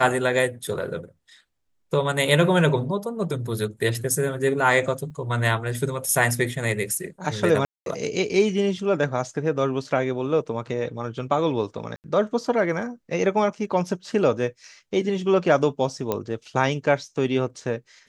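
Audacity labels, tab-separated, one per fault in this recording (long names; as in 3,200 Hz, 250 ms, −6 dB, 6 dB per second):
5.100000	5.110000	drop-out 5.2 ms
7.650000	7.860000	drop-out 212 ms
11.960000	12.040000	drop-out 79 ms
16.120000	16.120000	click −11 dBFS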